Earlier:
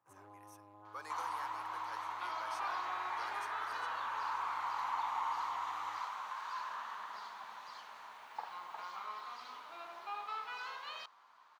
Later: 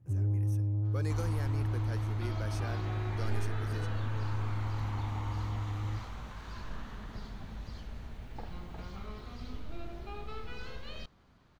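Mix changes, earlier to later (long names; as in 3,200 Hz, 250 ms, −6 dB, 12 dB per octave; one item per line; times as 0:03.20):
speech +5.5 dB
master: remove high-pass with resonance 1,000 Hz, resonance Q 4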